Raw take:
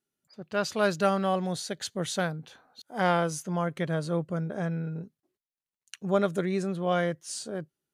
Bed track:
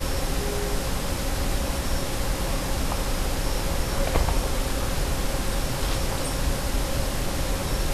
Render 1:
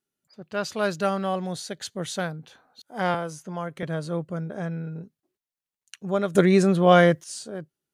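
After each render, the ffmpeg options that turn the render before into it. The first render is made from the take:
ffmpeg -i in.wav -filter_complex "[0:a]asettb=1/sr,asplit=3[link_01][link_02][link_03];[link_01]atrim=end=3.144[link_04];[link_02]atrim=start=3.14:end=3.83,asetpts=PTS-STARTPTS,afade=type=in:duration=0.004:curve=qsin,afade=type=out:start_time=0.686:duration=0.004:curve=qsin,acrossover=split=440|1700|7900[link_05][link_06][link_07][link_08];[link_05]acompressor=threshold=-35dB:ratio=3[link_09];[link_06]acompressor=threshold=-29dB:ratio=3[link_10];[link_07]acompressor=threshold=-46dB:ratio=3[link_11];[link_08]acompressor=threshold=-53dB:ratio=3[link_12];[link_09][link_10][link_11][link_12]amix=inputs=4:normalize=0[link_13];[link_03]atrim=start=3.826[link_14];[link_04][link_13]acrossfade=duration=0.004:curve1=hsin:curve2=qsin[link_15];[link_15][link_14]acrossfade=duration=0.004:curve1=qsin:curve2=hsin,asplit=3[link_16][link_17][link_18];[link_16]atrim=end=6.352[link_19];[link_17]atrim=start=6.348:end=7.242,asetpts=PTS-STARTPTS,volume=11dB[link_20];[link_18]atrim=start=7.238[link_21];[link_19][link_20]acrossfade=duration=0.004:curve1=hsin:curve2=hsin[link_22];[link_22][link_21]acrossfade=duration=0.004:curve1=hsin:curve2=hsin" out.wav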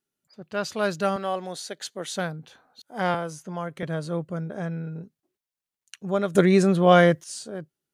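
ffmpeg -i in.wav -filter_complex "[0:a]asettb=1/sr,asplit=3[link_01][link_02][link_03];[link_01]atrim=end=1.164[link_04];[link_02]atrim=start=1.16:end=2.16,asetpts=PTS-STARTPTS,afade=type=in:duration=0.004:curve=qsin,afade=type=out:start_time=0.996:duration=0.004:curve=qsin,highpass=300[link_05];[link_03]atrim=start=2.156[link_06];[link_04][link_05]acrossfade=duration=0.004:curve1=hsin:curve2=qsin[link_07];[link_07][link_06]acrossfade=duration=0.004:curve1=qsin:curve2=hsin" out.wav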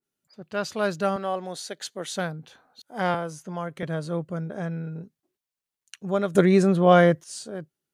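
ffmpeg -i in.wav -af "adynamicequalizer=threshold=0.0141:dfrequency=1700:dqfactor=0.7:tfrequency=1700:tqfactor=0.7:attack=5:release=100:ratio=0.375:range=2.5:mode=cutabove:tftype=highshelf" out.wav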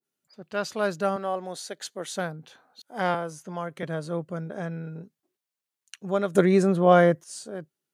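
ffmpeg -i in.wav -af "highpass=frequency=170:poles=1,adynamicequalizer=threshold=0.00562:dfrequency=3400:dqfactor=0.75:tfrequency=3400:tqfactor=0.75:attack=5:release=100:ratio=0.375:range=3:mode=cutabove:tftype=bell" out.wav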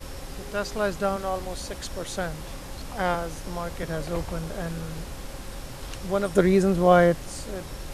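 ffmpeg -i in.wav -i bed.wav -filter_complex "[1:a]volume=-11.5dB[link_01];[0:a][link_01]amix=inputs=2:normalize=0" out.wav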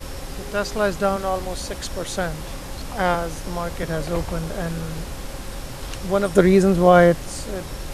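ffmpeg -i in.wav -af "volume=5dB,alimiter=limit=-1dB:level=0:latency=1" out.wav

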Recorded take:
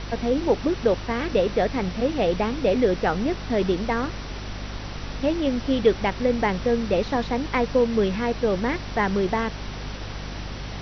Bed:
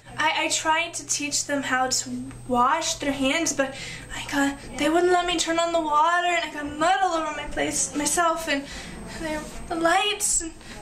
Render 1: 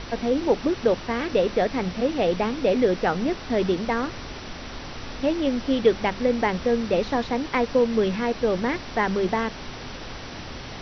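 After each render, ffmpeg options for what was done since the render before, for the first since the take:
ffmpeg -i in.wav -af "bandreject=frequency=50:width_type=h:width=6,bandreject=frequency=100:width_type=h:width=6,bandreject=frequency=150:width_type=h:width=6,bandreject=frequency=200:width_type=h:width=6" out.wav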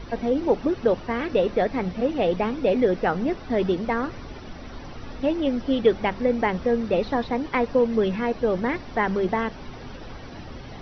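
ffmpeg -i in.wav -af "afftdn=noise_reduction=11:noise_floor=-37" out.wav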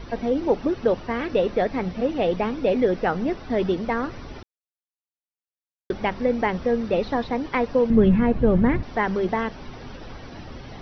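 ffmpeg -i in.wav -filter_complex "[0:a]asettb=1/sr,asplit=3[link_01][link_02][link_03];[link_01]atrim=end=7.904[link_04];[link_02]atrim=start=7.9:end=8.83,asetpts=PTS-STARTPTS,afade=type=in:duration=0.004:curve=qsin,afade=type=out:start_time=0.926:duration=0.004:curve=qsin,bass=frequency=250:gain=15,treble=frequency=4000:gain=-14[link_05];[link_03]atrim=start=8.826[link_06];[link_04][link_05]acrossfade=duration=0.004:curve1=hsin:curve2=qsin[link_07];[link_07][link_06]acrossfade=duration=0.004:curve1=qsin:curve2=hsin,asplit=3[link_08][link_09][link_10];[link_08]atrim=end=4.43,asetpts=PTS-STARTPTS,afade=type=out:start_time=4.426:duration=0.004:curve=hsin[link_11];[link_09]atrim=start=4.43:end=5.9,asetpts=PTS-STARTPTS,volume=0[link_12];[link_10]atrim=start=5.9,asetpts=PTS-STARTPTS,afade=type=in:duration=0.004:curve=hsin[link_13];[link_11][link_12][link_13]concat=n=3:v=0:a=1" out.wav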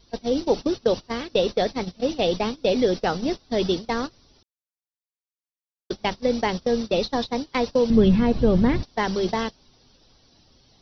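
ffmpeg -i in.wav -af "agate=range=-21dB:threshold=-25dB:ratio=16:detection=peak,highshelf=frequency=3000:width_type=q:width=1.5:gain=13" out.wav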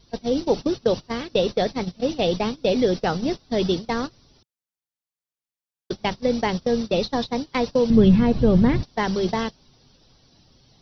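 ffmpeg -i in.wav -af "equalizer=frequency=140:width_type=o:width=0.91:gain=6" out.wav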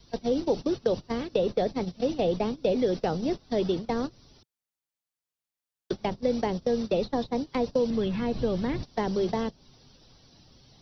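ffmpeg -i in.wav -filter_complex "[0:a]acrossover=split=760|2600[link_01][link_02][link_03];[link_01]acompressor=threshold=-21dB:ratio=4[link_04];[link_02]acompressor=threshold=-42dB:ratio=4[link_05];[link_03]acompressor=threshold=-47dB:ratio=4[link_06];[link_04][link_05][link_06]amix=inputs=3:normalize=0,acrossover=split=320|1000[link_07][link_08][link_09];[link_07]alimiter=level_in=3.5dB:limit=-24dB:level=0:latency=1,volume=-3.5dB[link_10];[link_10][link_08][link_09]amix=inputs=3:normalize=0" out.wav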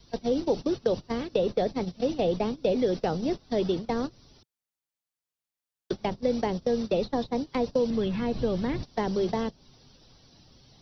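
ffmpeg -i in.wav -af anull out.wav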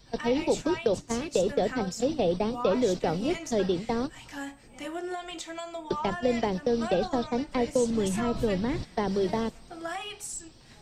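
ffmpeg -i in.wav -i bed.wav -filter_complex "[1:a]volume=-15dB[link_01];[0:a][link_01]amix=inputs=2:normalize=0" out.wav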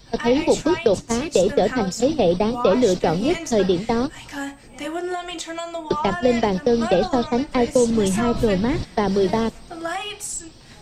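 ffmpeg -i in.wav -af "volume=8dB" out.wav

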